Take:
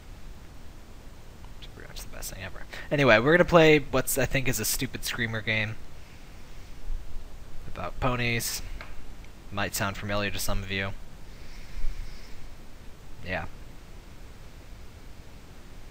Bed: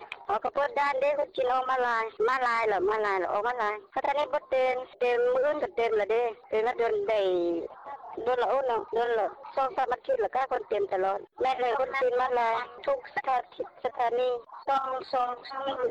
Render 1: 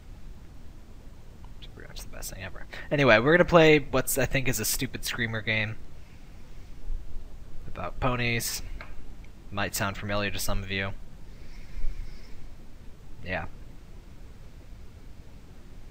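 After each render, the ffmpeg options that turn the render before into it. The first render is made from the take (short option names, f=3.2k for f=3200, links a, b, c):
-af "afftdn=nr=6:nf=-47"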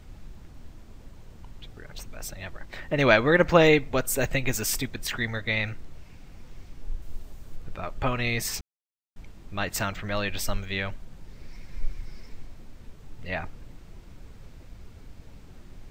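-filter_complex "[0:a]asettb=1/sr,asplit=3[a][b][c];[a]atrim=end=7.024[d];[b]atrim=start=7.02:end=7.56,asetpts=PTS-STARTPTS,afade=t=in:d=0.004:c=qsin,afade=t=out:st=0.536:d=0.004:c=qsin,highshelf=f=8k:g=10[e];[c]atrim=start=7.556[f];[d][e]acrossfade=d=0.004:c1=hsin:c2=qsin[g];[g][f]acrossfade=d=0.004:c1=qsin:c2=hsin,asplit=3[h][i][j];[h]atrim=end=8.61,asetpts=PTS-STARTPTS,afade=t=out:st=8.606:d=0.004:c=hsin[k];[i]atrim=start=8.61:end=9.16,asetpts=PTS-STARTPTS,volume=0[l];[j]atrim=start=9.16,asetpts=PTS-STARTPTS,afade=t=in:d=0.004:c=hsin[m];[k][l][m]concat=n=3:v=0:a=1"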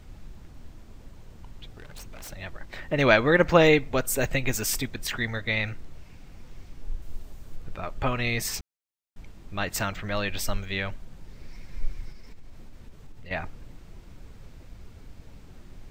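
-filter_complex "[0:a]asettb=1/sr,asplit=3[a][b][c];[a]atrim=end=1.674[d];[b]atrim=start=1.67:end=2.33,asetpts=PTS-STARTPTS,afade=t=in:d=0.004:c=qsin,afade=t=out:st=0.656:d=0.004:c=qsin,aeval=exprs='0.0168*(abs(mod(val(0)/0.0168+3,4)-2)-1)':c=same[e];[c]atrim=start=2.326[f];[d][e]acrossfade=d=0.004:c1=hsin:c2=qsin[g];[g][f]acrossfade=d=0.004:c1=qsin:c2=hsin,asettb=1/sr,asplit=3[h][i][j];[h]atrim=end=12.114[k];[i]atrim=start=12.11:end=13.31,asetpts=PTS-STARTPTS,afade=t=in:d=0.004:c=qsin,afade=t=out:st=1.196:d=0.004:c=qsin,acompressor=threshold=-37dB:ratio=10:attack=3.2:release=140:knee=1:detection=peak[l];[j]atrim=start=13.306[m];[k][l]acrossfade=d=0.004:c1=hsin:c2=qsin[n];[n][m]acrossfade=d=0.004:c1=qsin:c2=hsin"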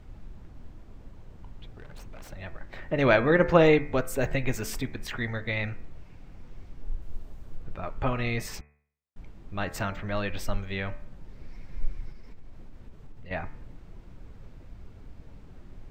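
-af "highshelf=f=3k:g=-12,bandreject=f=73.37:t=h:w=4,bandreject=f=146.74:t=h:w=4,bandreject=f=220.11:t=h:w=4,bandreject=f=293.48:t=h:w=4,bandreject=f=366.85:t=h:w=4,bandreject=f=440.22:t=h:w=4,bandreject=f=513.59:t=h:w=4,bandreject=f=586.96:t=h:w=4,bandreject=f=660.33:t=h:w=4,bandreject=f=733.7:t=h:w=4,bandreject=f=807.07:t=h:w=4,bandreject=f=880.44:t=h:w=4,bandreject=f=953.81:t=h:w=4,bandreject=f=1.02718k:t=h:w=4,bandreject=f=1.10055k:t=h:w=4,bandreject=f=1.17392k:t=h:w=4,bandreject=f=1.24729k:t=h:w=4,bandreject=f=1.32066k:t=h:w=4,bandreject=f=1.39403k:t=h:w=4,bandreject=f=1.4674k:t=h:w=4,bandreject=f=1.54077k:t=h:w=4,bandreject=f=1.61414k:t=h:w=4,bandreject=f=1.68751k:t=h:w=4,bandreject=f=1.76088k:t=h:w=4,bandreject=f=1.83425k:t=h:w=4,bandreject=f=1.90762k:t=h:w=4,bandreject=f=1.98099k:t=h:w=4,bandreject=f=2.05436k:t=h:w=4,bandreject=f=2.12773k:t=h:w=4,bandreject=f=2.2011k:t=h:w=4,bandreject=f=2.27447k:t=h:w=4,bandreject=f=2.34784k:t=h:w=4,bandreject=f=2.42121k:t=h:w=4,bandreject=f=2.49458k:t=h:w=4,bandreject=f=2.56795k:t=h:w=4"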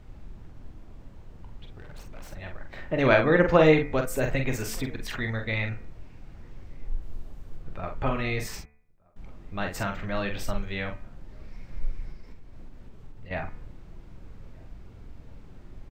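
-filter_complex "[0:a]asplit=2[a][b];[b]adelay=45,volume=-6dB[c];[a][c]amix=inputs=2:normalize=0,asplit=2[d][e];[e]adelay=1224,volume=-29dB,highshelf=f=4k:g=-27.6[f];[d][f]amix=inputs=2:normalize=0"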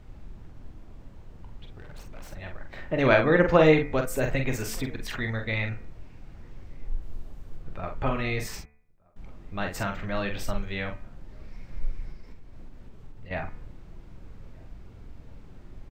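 -af anull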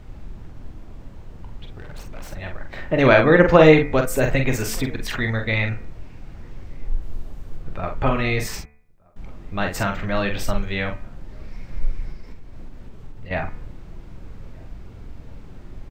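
-af "volume=7dB,alimiter=limit=-1dB:level=0:latency=1"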